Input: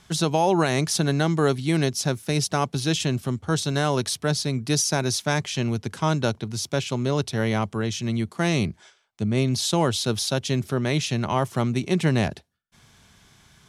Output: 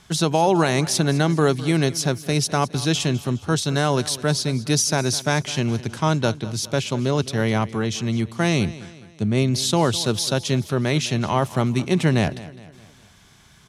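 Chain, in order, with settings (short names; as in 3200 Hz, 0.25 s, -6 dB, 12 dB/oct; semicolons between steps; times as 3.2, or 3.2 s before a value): feedback echo 0.207 s, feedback 47%, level -17.5 dB; gain +2.5 dB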